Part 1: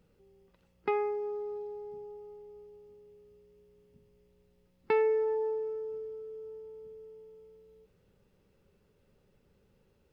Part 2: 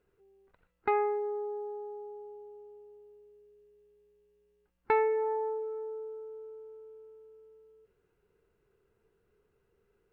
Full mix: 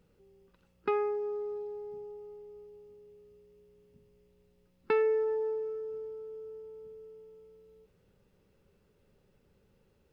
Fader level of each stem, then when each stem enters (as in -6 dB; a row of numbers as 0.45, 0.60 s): 0.0, -9.5 dB; 0.00, 0.00 s